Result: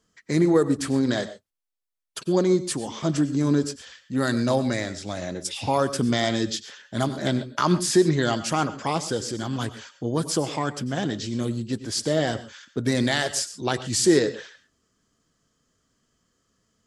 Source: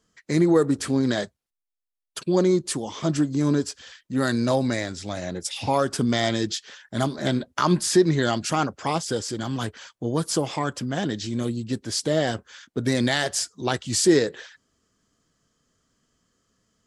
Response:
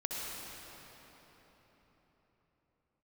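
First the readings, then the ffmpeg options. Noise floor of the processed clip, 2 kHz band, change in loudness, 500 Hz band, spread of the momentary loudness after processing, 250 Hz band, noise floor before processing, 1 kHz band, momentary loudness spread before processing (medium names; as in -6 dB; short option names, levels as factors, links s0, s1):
-73 dBFS, -0.5 dB, -0.5 dB, -0.5 dB, 12 LU, 0.0 dB, -85 dBFS, -0.5 dB, 12 LU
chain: -filter_complex "[0:a]asplit=2[s0][s1];[1:a]atrim=start_sample=2205,afade=t=out:st=0.14:d=0.01,atrim=end_sample=6615,asetrate=29106,aresample=44100[s2];[s1][s2]afir=irnorm=-1:irlink=0,volume=0.422[s3];[s0][s3]amix=inputs=2:normalize=0,volume=0.668"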